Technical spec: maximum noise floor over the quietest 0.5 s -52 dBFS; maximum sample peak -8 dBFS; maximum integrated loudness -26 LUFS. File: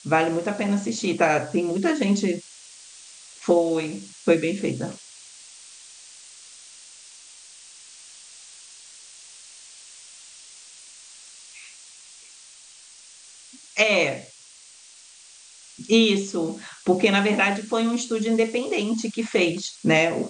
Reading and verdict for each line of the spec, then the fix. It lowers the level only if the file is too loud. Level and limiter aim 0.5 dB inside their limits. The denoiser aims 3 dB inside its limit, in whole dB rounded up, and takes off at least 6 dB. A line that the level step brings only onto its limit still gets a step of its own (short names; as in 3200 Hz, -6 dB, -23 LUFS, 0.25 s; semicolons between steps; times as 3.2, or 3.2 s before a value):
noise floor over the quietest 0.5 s -49 dBFS: fail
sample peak -5.5 dBFS: fail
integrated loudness -23.0 LUFS: fail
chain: gain -3.5 dB